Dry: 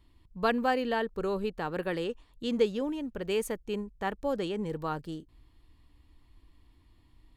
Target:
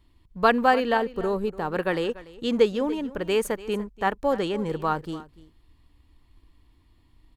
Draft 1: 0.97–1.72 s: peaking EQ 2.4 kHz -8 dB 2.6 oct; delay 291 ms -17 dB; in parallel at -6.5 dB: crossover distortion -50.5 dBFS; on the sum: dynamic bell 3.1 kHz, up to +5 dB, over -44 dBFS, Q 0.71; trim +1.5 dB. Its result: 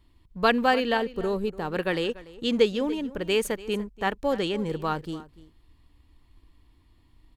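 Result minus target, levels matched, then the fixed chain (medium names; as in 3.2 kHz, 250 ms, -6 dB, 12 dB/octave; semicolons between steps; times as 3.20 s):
4 kHz band +5.0 dB
0.97–1.72 s: peaking EQ 2.4 kHz -8 dB 2.6 oct; delay 291 ms -17 dB; in parallel at -6.5 dB: crossover distortion -50.5 dBFS; on the sum: dynamic bell 1.1 kHz, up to +5 dB, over -44 dBFS, Q 0.71; trim +1.5 dB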